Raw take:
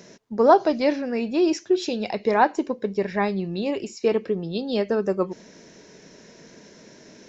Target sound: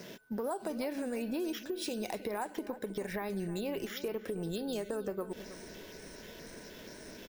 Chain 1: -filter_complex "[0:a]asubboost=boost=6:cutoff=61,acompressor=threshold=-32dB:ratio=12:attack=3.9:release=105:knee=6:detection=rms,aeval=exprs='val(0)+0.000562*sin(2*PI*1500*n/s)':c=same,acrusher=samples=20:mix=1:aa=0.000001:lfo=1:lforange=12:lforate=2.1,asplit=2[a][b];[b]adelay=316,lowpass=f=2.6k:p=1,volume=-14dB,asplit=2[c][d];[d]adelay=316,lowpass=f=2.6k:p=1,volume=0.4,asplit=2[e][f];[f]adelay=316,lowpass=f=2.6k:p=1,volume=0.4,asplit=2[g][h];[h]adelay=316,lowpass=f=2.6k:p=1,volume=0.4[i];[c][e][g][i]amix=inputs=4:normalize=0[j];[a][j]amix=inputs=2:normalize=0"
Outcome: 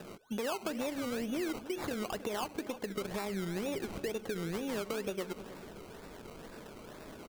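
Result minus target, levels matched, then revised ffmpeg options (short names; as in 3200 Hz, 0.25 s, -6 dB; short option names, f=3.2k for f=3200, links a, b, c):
decimation with a swept rate: distortion +11 dB
-filter_complex "[0:a]asubboost=boost=6:cutoff=61,acompressor=threshold=-32dB:ratio=12:attack=3.9:release=105:knee=6:detection=rms,aeval=exprs='val(0)+0.000562*sin(2*PI*1500*n/s)':c=same,acrusher=samples=4:mix=1:aa=0.000001:lfo=1:lforange=2.4:lforate=2.1,asplit=2[a][b];[b]adelay=316,lowpass=f=2.6k:p=1,volume=-14dB,asplit=2[c][d];[d]adelay=316,lowpass=f=2.6k:p=1,volume=0.4,asplit=2[e][f];[f]adelay=316,lowpass=f=2.6k:p=1,volume=0.4,asplit=2[g][h];[h]adelay=316,lowpass=f=2.6k:p=1,volume=0.4[i];[c][e][g][i]amix=inputs=4:normalize=0[j];[a][j]amix=inputs=2:normalize=0"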